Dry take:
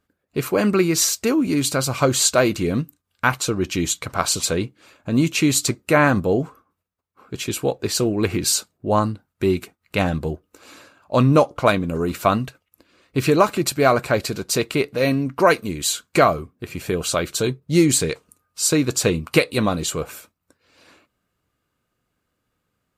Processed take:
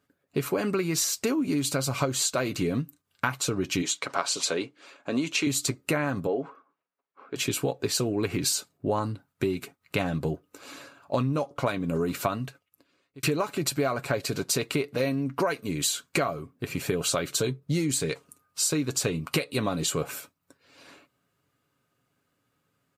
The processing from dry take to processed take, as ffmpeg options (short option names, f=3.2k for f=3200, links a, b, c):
-filter_complex "[0:a]asettb=1/sr,asplit=3[a][b][c];[a]atrim=end=3.824[d];[b]atrim=start=3.82:end=5.47,asetpts=PTS-STARTPTS,afade=t=in:d=0.004:c=qsin,afade=t=out:st=1.646:d=0.004:c=qsin,highpass=330,lowpass=7.4k[e];[c]atrim=start=5.466[f];[d][e]acrossfade=d=0.004:c1=hsin:c2=qsin[g];[g][f]acrossfade=d=0.004:c1=qsin:c2=hsin,asettb=1/sr,asplit=3[h][i][j];[h]atrim=end=6.274[k];[i]atrim=start=6.27:end=7.36,asetpts=PTS-STARTPTS,afade=t=in:d=0.004:c=qsin,afade=t=out:st=1.086:d=0.004:c=qsin,highpass=340,lowpass=2.8k[l];[j]atrim=start=7.356[m];[k][l]acrossfade=d=0.004:c1=hsin:c2=qsin[n];[n][m]acrossfade=d=0.004:c1=qsin:c2=hsin,asplit=2[o][p];[o]atrim=end=13.23,asetpts=PTS-STARTPTS,afade=t=out:st=12.1:d=1.13[q];[p]atrim=start=13.23,asetpts=PTS-STARTPTS,afade=t=in:d=0.004:c=hsin[r];[q][r]concat=n=2:v=0:a=1,aecho=1:1:7.2:0.38,acompressor=threshold=-23dB:ratio=10,highpass=88"